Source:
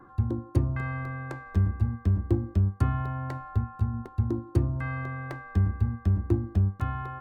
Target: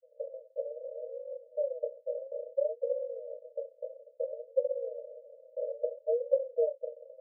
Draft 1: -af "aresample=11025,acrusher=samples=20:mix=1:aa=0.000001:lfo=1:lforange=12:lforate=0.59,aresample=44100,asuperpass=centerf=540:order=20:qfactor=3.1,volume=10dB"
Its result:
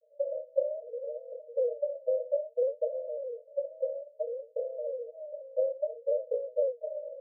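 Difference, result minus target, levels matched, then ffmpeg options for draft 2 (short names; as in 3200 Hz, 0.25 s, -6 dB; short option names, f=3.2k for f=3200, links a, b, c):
decimation with a swept rate: distortion -28 dB
-af "aresample=11025,acrusher=samples=73:mix=1:aa=0.000001:lfo=1:lforange=43.8:lforate=0.59,aresample=44100,asuperpass=centerf=540:order=20:qfactor=3.1,volume=10dB"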